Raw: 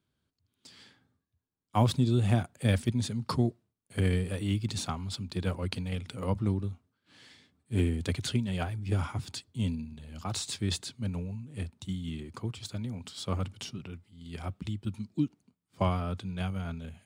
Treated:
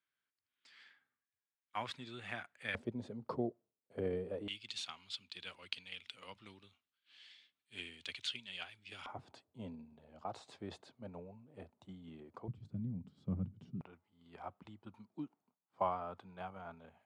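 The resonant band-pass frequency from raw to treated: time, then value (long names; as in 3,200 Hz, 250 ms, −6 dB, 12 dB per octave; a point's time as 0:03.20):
resonant band-pass, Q 2
1,900 Hz
from 0:02.75 530 Hz
from 0:04.48 3,000 Hz
from 0:09.06 670 Hz
from 0:12.48 170 Hz
from 0:13.81 860 Hz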